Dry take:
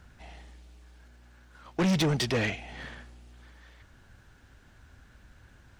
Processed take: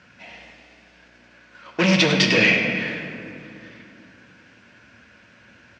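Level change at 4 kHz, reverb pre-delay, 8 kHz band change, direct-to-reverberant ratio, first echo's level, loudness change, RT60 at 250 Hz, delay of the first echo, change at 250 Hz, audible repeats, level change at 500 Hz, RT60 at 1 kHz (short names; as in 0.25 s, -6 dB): +13.0 dB, 5 ms, +8.0 dB, 0.5 dB, -10.0 dB, +11.0 dB, 3.7 s, 0.1 s, +7.5 dB, 1, +9.0 dB, 2.5 s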